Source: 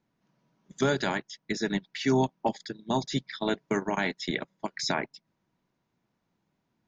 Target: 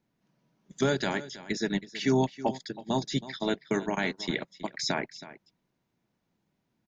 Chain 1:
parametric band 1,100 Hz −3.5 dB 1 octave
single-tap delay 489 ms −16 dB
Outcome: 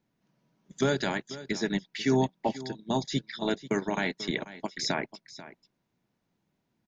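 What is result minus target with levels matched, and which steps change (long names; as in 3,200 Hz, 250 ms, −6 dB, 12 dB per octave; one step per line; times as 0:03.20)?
echo 167 ms late
change: single-tap delay 322 ms −16 dB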